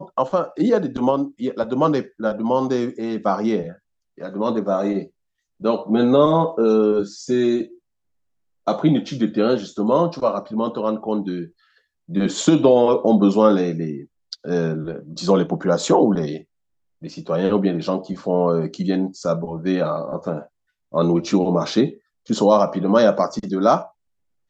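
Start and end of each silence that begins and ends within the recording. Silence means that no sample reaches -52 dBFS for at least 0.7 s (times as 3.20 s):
7.79–8.67 s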